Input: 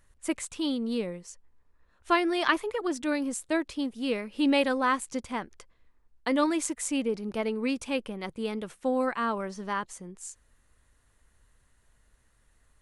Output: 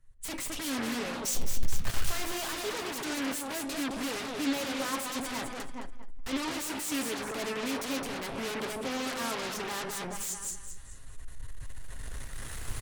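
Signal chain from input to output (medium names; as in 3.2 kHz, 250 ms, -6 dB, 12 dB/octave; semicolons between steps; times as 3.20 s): 1.25–2.47 s: jump at every zero crossing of -26.5 dBFS; recorder AGC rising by 8.3 dB/s; on a send at -13 dB: reverberation RT60 0.30 s, pre-delay 5 ms; on the sum: peak limiter -21 dBFS, peak gain reduction 10.5 dB; comb 7.4 ms, depth 48%; feedback delay 214 ms, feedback 43%, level -8 dB; in parallel at -7 dB: sine folder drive 19 dB, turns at -18.5 dBFS; on the sum: de-hum 171.8 Hz, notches 35; three bands expanded up and down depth 70%; trim -8.5 dB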